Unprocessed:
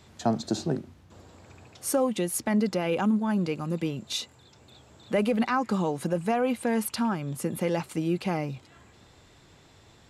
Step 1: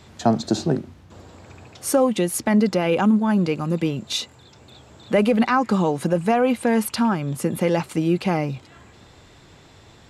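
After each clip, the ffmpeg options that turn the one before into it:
ffmpeg -i in.wav -af "highshelf=frequency=7400:gain=-4.5,volume=7dB" out.wav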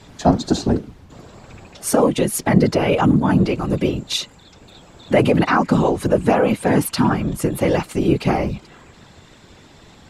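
ffmpeg -i in.wav -af "afftfilt=real='hypot(re,im)*cos(2*PI*random(0))':imag='hypot(re,im)*sin(2*PI*random(1))':win_size=512:overlap=0.75,volume=9dB" out.wav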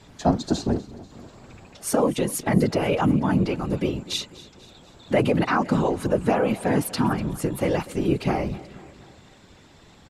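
ffmpeg -i in.wav -af "aecho=1:1:244|488|732|976:0.112|0.0606|0.0327|0.0177,volume=-5.5dB" out.wav

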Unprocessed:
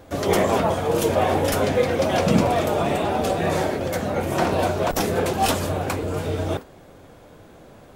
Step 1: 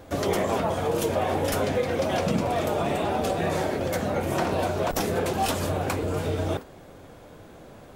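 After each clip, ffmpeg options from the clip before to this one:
ffmpeg -i in.wav -af "acompressor=threshold=-23dB:ratio=3" out.wav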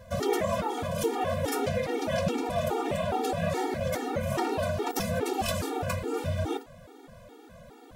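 ffmpeg -i in.wav -af "afftfilt=real='re*gt(sin(2*PI*2.4*pts/sr)*(1-2*mod(floor(b*sr/1024/240),2)),0)':imag='im*gt(sin(2*PI*2.4*pts/sr)*(1-2*mod(floor(b*sr/1024/240),2)),0)':win_size=1024:overlap=0.75" out.wav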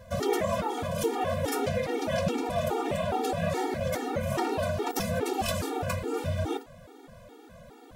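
ffmpeg -i in.wav -af anull out.wav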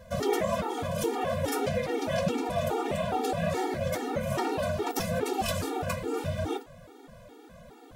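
ffmpeg -i in.wav -af "flanger=delay=4.2:depth=3.4:regen=-66:speed=1.7:shape=triangular,volume=4dB" out.wav

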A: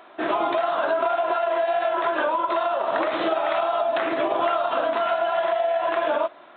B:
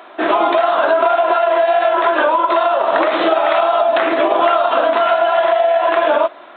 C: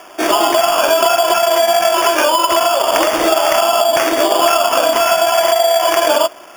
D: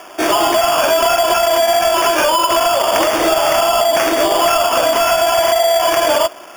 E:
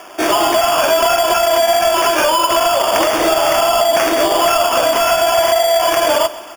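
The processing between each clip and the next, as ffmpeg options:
ffmpeg -i in.wav -af "highpass=220,volume=9dB" out.wav
ffmpeg -i in.wav -af "acrusher=samples=11:mix=1:aa=0.000001,volume=1dB" out.wav
ffmpeg -i in.wav -af "acontrast=88,volume=-5.5dB" out.wav
ffmpeg -i in.wav -af "aecho=1:1:133|266|399|532|665:0.126|0.073|0.0424|0.0246|0.0142" out.wav

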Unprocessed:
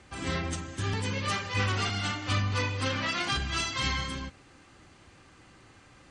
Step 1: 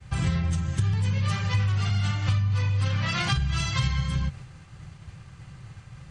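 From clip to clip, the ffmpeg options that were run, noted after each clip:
ffmpeg -i in.wav -af "agate=range=-33dB:threshold=-51dB:ratio=3:detection=peak,lowshelf=frequency=200:width_type=q:width=3:gain=10.5,acompressor=threshold=-27dB:ratio=10,volume=5.5dB" out.wav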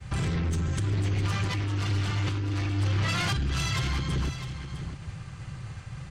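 ffmpeg -i in.wav -af "alimiter=limit=-20dB:level=0:latency=1:release=183,aeval=exprs='0.1*sin(PI/2*1.78*val(0)/0.1)':channel_layout=same,aecho=1:1:655:0.299,volume=-4dB" out.wav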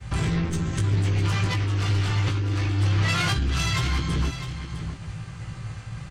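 ffmpeg -i in.wav -filter_complex "[0:a]asplit=2[link_01][link_02];[link_02]adelay=18,volume=-5dB[link_03];[link_01][link_03]amix=inputs=2:normalize=0,volume=2.5dB" out.wav

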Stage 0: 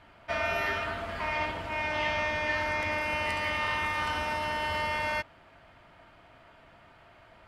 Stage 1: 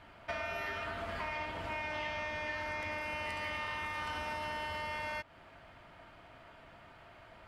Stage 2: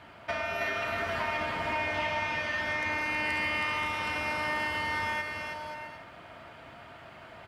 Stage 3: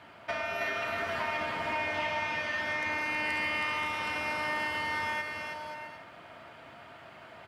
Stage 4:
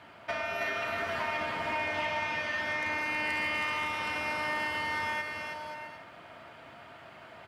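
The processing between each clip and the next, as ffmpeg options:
ffmpeg -i in.wav -af "acompressor=threshold=-36dB:ratio=6" out.wav
ffmpeg -i in.wav -af "highpass=81,aecho=1:1:320|528|663.2|751.1|808.2:0.631|0.398|0.251|0.158|0.1,volume=5.5dB" out.wav
ffmpeg -i in.wav -af "highpass=58,lowshelf=frequency=100:gain=-7.5,volume=-1dB" out.wav
ffmpeg -i in.wav -af "volume=23dB,asoftclip=hard,volume=-23dB" out.wav

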